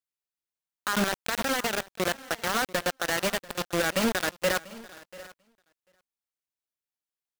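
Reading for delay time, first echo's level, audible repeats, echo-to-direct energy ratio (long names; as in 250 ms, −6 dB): 690 ms, −20.5 dB, 2, −18.0 dB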